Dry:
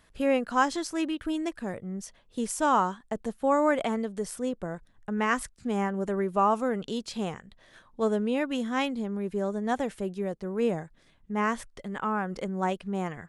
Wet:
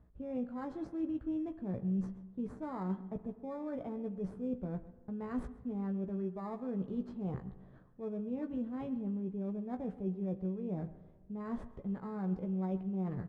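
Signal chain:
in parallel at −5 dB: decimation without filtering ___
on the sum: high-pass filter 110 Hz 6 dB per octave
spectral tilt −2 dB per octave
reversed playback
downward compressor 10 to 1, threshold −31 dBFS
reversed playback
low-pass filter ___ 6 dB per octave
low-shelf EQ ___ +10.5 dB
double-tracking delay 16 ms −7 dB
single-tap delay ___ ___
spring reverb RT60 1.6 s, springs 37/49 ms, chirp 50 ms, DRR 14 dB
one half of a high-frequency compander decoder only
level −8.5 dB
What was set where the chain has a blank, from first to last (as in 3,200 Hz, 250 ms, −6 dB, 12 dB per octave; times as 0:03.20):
15×, 1,100 Hz, 240 Hz, 132 ms, −17.5 dB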